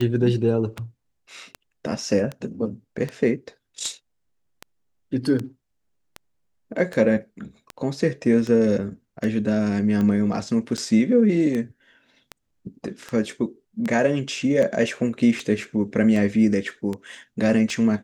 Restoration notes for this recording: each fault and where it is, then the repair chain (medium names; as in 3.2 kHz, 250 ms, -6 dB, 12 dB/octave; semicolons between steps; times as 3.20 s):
tick 78 rpm -16 dBFS
10.77–10.78 s: dropout 7.6 ms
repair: de-click; interpolate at 10.77 s, 7.6 ms